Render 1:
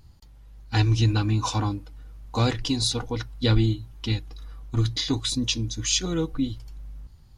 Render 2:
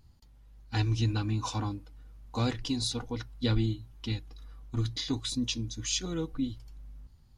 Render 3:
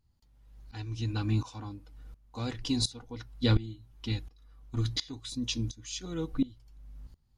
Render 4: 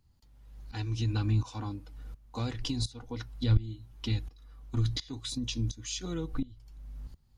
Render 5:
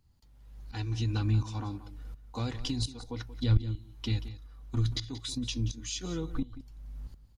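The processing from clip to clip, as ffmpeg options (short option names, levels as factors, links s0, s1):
-af "equalizer=f=240:t=o:w=0.21:g=5,volume=0.422"
-af "aeval=exprs='val(0)*pow(10,-19*if(lt(mod(-1.4*n/s,1),2*abs(-1.4)/1000),1-mod(-1.4*n/s,1)/(2*abs(-1.4)/1000),(mod(-1.4*n/s,1)-2*abs(-1.4)/1000)/(1-2*abs(-1.4)/1000))/20)':c=same,volume=1.78"
-filter_complex "[0:a]acrossover=split=120[s0][s1];[s1]acompressor=threshold=0.0141:ratio=10[s2];[s0][s2]amix=inputs=2:normalize=0,volume=1.68"
-af "aecho=1:1:181:0.188"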